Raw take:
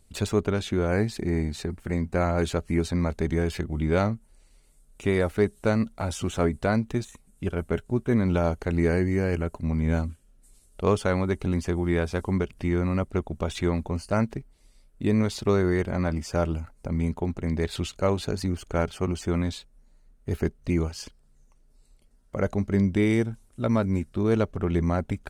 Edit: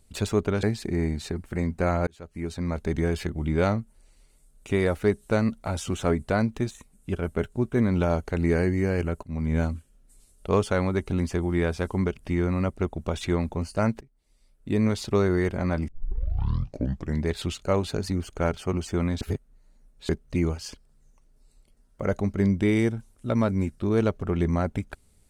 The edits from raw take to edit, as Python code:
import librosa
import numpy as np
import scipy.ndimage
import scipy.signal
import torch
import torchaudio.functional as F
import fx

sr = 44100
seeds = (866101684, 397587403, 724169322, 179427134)

y = fx.edit(x, sr, fx.cut(start_s=0.63, length_s=0.34),
    fx.fade_in_span(start_s=2.41, length_s=0.89),
    fx.fade_in_from(start_s=9.57, length_s=0.37, curve='qsin', floor_db=-13.0),
    fx.fade_in_from(start_s=14.35, length_s=0.84, floor_db=-23.5),
    fx.tape_start(start_s=16.22, length_s=1.37),
    fx.reverse_span(start_s=19.55, length_s=0.88), tone=tone)